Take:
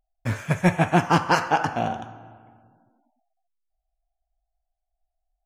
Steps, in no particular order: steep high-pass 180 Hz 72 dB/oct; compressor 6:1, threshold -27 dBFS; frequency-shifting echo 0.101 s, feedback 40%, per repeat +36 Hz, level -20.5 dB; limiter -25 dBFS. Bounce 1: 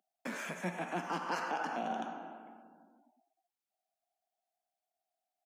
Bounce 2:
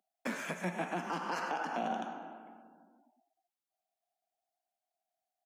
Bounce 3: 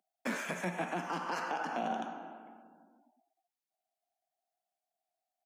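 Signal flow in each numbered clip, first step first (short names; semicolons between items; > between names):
compressor > limiter > steep high-pass > frequency-shifting echo; frequency-shifting echo > compressor > steep high-pass > limiter; steep high-pass > compressor > limiter > frequency-shifting echo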